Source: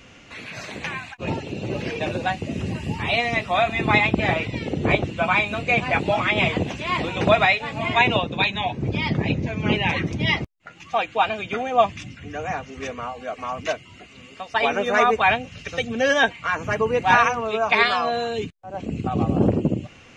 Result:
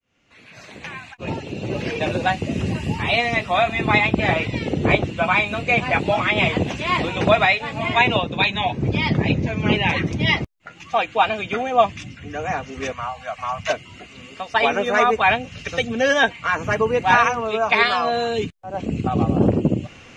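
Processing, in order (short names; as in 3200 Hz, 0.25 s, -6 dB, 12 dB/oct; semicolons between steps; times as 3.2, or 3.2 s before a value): opening faded in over 2.25 s; in parallel at +1.5 dB: vocal rider within 3 dB 0.5 s; 12.92–13.7 on the sum: Chebyshev band-stop 160–750 Hz, order 2; gain -4.5 dB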